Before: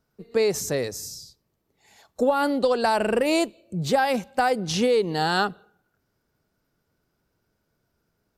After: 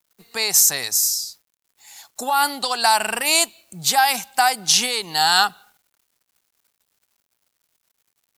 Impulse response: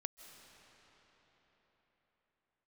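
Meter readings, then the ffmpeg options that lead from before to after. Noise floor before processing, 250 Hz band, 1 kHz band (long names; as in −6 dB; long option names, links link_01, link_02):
−75 dBFS, −10.0 dB, +5.5 dB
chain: -af "crystalizer=i=9:c=0,lowshelf=frequency=640:width_type=q:width=3:gain=-6.5,acrusher=bits=8:mix=0:aa=0.000001,volume=-2.5dB"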